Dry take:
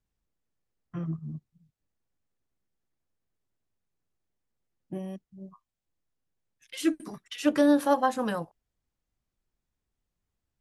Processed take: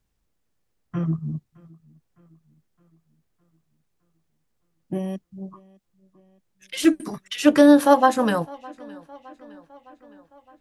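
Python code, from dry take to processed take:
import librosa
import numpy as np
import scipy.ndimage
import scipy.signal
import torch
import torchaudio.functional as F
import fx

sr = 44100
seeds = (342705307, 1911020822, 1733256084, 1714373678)

y = fx.echo_tape(x, sr, ms=612, feedback_pct=63, wet_db=-23.0, lp_hz=4800.0, drive_db=7.0, wow_cents=22)
y = fx.doppler_dist(y, sr, depth_ms=0.39, at=(5.41, 6.85))
y = y * librosa.db_to_amplitude(8.5)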